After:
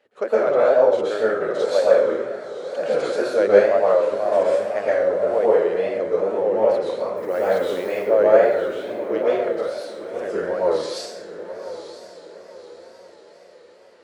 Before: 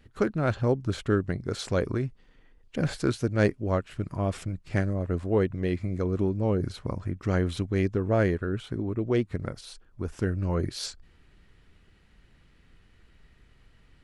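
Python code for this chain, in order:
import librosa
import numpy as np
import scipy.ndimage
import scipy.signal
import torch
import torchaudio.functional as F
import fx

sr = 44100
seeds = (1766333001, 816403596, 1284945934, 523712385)

p1 = fx.highpass_res(x, sr, hz=560.0, q=4.9)
p2 = fx.high_shelf(p1, sr, hz=8300.0, db=-9.5)
p3 = fx.dmg_noise_colour(p2, sr, seeds[0], colour='blue', level_db=-56.0, at=(7.16, 7.9), fade=0.02)
p4 = p3 + fx.echo_diffused(p3, sr, ms=964, feedback_pct=43, wet_db=-11.5, dry=0)
p5 = fx.rev_plate(p4, sr, seeds[1], rt60_s=1.0, hf_ratio=0.75, predelay_ms=105, drr_db=-8.0)
p6 = fx.wow_flutter(p5, sr, seeds[2], rate_hz=2.1, depth_cents=100.0)
y = F.gain(torch.from_numpy(p6), -3.0).numpy()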